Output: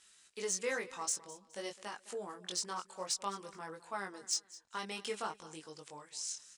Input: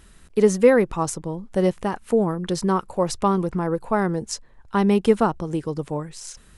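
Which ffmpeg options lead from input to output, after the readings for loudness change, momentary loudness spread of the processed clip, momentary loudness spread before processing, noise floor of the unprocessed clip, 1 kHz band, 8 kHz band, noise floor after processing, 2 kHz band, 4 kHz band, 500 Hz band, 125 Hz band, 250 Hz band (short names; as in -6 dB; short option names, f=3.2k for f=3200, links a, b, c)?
-17.5 dB, 12 LU, 13 LU, -51 dBFS, -16.5 dB, -3.0 dB, -68 dBFS, -11.0 dB, -4.0 dB, -22.5 dB, -31.0 dB, -29.0 dB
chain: -filter_complex "[0:a]flanger=delay=19:depth=3.5:speed=0.55,lowpass=f=7.8k:w=0.5412,lowpass=f=7.8k:w=1.3066,aderivative,asoftclip=type=tanh:threshold=-28dB,asplit=2[a][b];[b]aecho=0:1:210|420:0.119|0.0345[c];[a][c]amix=inputs=2:normalize=0,volume=4dB"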